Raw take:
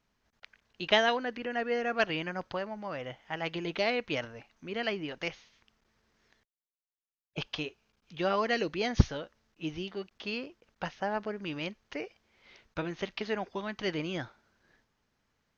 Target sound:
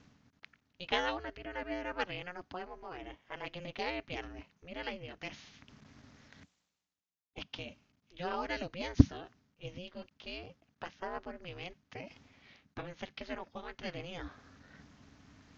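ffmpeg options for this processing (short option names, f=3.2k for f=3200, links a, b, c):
-af "aresample=16000,aresample=44100,areverse,acompressor=mode=upward:threshold=-37dB:ratio=2.5,areverse,lowshelf=f=130:t=q:w=3:g=6.5,aeval=exprs='val(0)*sin(2*PI*180*n/s)':c=same,volume=-4.5dB"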